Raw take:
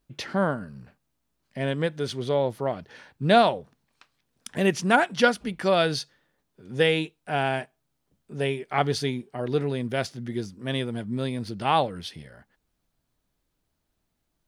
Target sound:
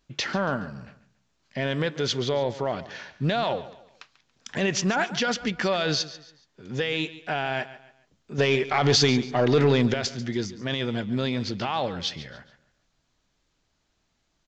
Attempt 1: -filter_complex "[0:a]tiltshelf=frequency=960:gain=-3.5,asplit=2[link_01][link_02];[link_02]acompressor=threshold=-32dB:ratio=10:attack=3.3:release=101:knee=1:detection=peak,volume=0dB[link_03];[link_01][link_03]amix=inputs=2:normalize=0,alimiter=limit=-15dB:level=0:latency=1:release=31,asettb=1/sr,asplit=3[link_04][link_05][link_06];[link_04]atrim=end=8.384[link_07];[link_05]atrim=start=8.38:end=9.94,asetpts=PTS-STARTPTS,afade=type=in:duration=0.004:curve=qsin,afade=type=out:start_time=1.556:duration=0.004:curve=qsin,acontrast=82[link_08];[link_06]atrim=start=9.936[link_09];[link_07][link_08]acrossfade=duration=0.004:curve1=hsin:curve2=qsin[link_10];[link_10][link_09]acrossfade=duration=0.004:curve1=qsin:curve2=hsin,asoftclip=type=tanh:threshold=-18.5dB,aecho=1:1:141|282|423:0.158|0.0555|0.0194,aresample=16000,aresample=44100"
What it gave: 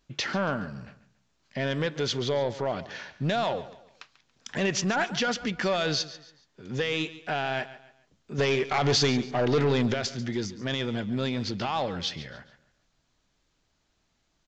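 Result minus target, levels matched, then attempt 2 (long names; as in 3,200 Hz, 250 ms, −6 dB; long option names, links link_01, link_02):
downward compressor: peak gain reduction +7 dB; soft clipping: distortion +8 dB
-filter_complex "[0:a]tiltshelf=frequency=960:gain=-3.5,asplit=2[link_01][link_02];[link_02]acompressor=threshold=-24.5dB:ratio=10:attack=3.3:release=101:knee=1:detection=peak,volume=0dB[link_03];[link_01][link_03]amix=inputs=2:normalize=0,alimiter=limit=-15dB:level=0:latency=1:release=31,asettb=1/sr,asplit=3[link_04][link_05][link_06];[link_04]atrim=end=8.384[link_07];[link_05]atrim=start=8.38:end=9.94,asetpts=PTS-STARTPTS,afade=type=in:duration=0.004:curve=qsin,afade=type=out:start_time=1.556:duration=0.004:curve=qsin,acontrast=82[link_08];[link_06]atrim=start=9.936[link_09];[link_07][link_08]acrossfade=duration=0.004:curve1=hsin:curve2=qsin[link_10];[link_10][link_09]acrossfade=duration=0.004:curve1=qsin:curve2=hsin,asoftclip=type=tanh:threshold=-11dB,aecho=1:1:141|282|423:0.158|0.0555|0.0194,aresample=16000,aresample=44100"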